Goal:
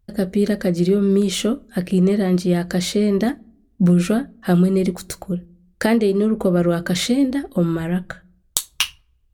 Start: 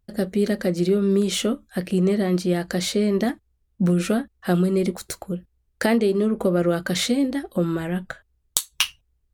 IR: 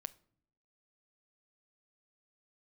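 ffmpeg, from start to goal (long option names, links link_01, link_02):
-filter_complex "[0:a]asplit=2[link_01][link_02];[1:a]atrim=start_sample=2205,lowshelf=frequency=270:gain=12[link_03];[link_02][link_03]afir=irnorm=-1:irlink=0,volume=-1.5dB[link_04];[link_01][link_04]amix=inputs=2:normalize=0,volume=-2.5dB"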